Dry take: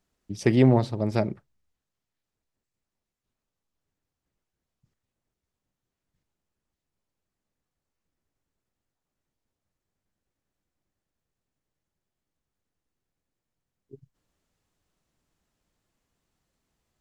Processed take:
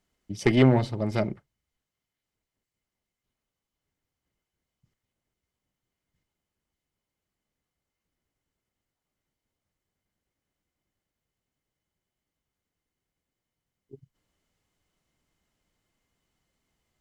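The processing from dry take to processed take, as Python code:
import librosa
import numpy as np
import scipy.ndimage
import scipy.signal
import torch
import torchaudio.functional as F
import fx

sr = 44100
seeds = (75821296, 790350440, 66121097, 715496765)

y = fx.small_body(x, sr, hz=(2100.0, 3000.0), ring_ms=45, db=12)
y = fx.cheby_harmonics(y, sr, harmonics=(4,), levels_db=(-17,), full_scale_db=-6.5)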